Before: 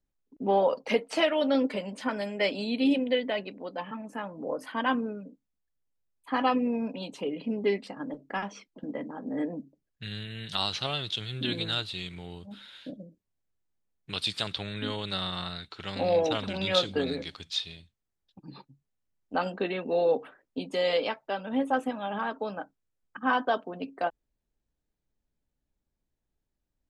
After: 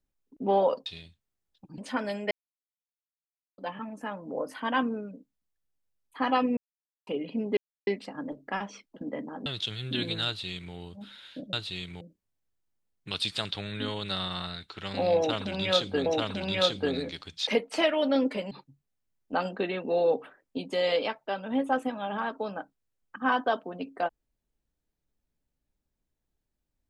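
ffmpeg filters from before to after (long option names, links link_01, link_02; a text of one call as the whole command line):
ffmpeg -i in.wav -filter_complex "[0:a]asplit=14[link_01][link_02][link_03][link_04][link_05][link_06][link_07][link_08][link_09][link_10][link_11][link_12][link_13][link_14];[link_01]atrim=end=0.862[link_15];[link_02]atrim=start=17.598:end=18.522[link_16];[link_03]atrim=start=1.898:end=2.43,asetpts=PTS-STARTPTS,afade=type=out:start_time=0.528:duration=0.004:curve=hsin[link_17];[link_04]atrim=start=2.43:end=3.7,asetpts=PTS-STARTPTS,volume=0[link_18];[link_05]atrim=start=3.7:end=6.69,asetpts=PTS-STARTPTS,afade=type=in:duration=0.004:curve=hsin,afade=type=out:start_time=2.986:duration=0.004:curve=hsin[link_19];[link_06]atrim=start=6.69:end=7.19,asetpts=PTS-STARTPTS,volume=0[link_20];[link_07]atrim=start=7.19:end=7.69,asetpts=PTS-STARTPTS,afade=type=in:duration=0.004:curve=hsin,afade=type=out:start_time=0.496:duration=0.004:curve=hsin,apad=pad_dur=0.3[link_21];[link_08]atrim=start=7.69:end=9.282,asetpts=PTS-STARTPTS,afade=type=in:duration=0.004:curve=hsin[link_22];[link_09]atrim=start=10.958:end=13.032[link_23];[link_10]atrim=start=11.758:end=12.242[link_24];[link_11]atrim=start=13.028:end=17.082[link_25];[link_12]atrim=start=16.188:end=17.602[link_26];[link_13]atrim=start=0.858:end=1.902[link_27];[link_14]atrim=start=18.518[link_28];[link_15][link_16]acrossfade=duration=0.004:curve1=hsin:curve2=hsin[link_29];[link_17][link_18][link_19][link_20][link_21][link_22]concat=n=6:v=0:a=1[link_30];[link_29][link_30]acrossfade=duration=0.004:curve1=hsin:curve2=hsin[link_31];[link_31][link_23]acrossfade=duration=0.004:curve1=hsin:curve2=hsin[link_32];[link_32][link_24]acrossfade=duration=0.004:curve1=hsin:curve2=hsin[link_33];[link_33][link_25]acrossfade=duration=0.004:curve1=hsin:curve2=hsin[link_34];[link_34][link_26]acrossfade=duration=0.004:curve1=hsin:curve2=hsin[link_35];[link_35][link_27]acrossfade=duration=0.004:curve1=hsin:curve2=hsin[link_36];[link_36][link_28]acrossfade=duration=0.004:curve1=hsin:curve2=hsin" out.wav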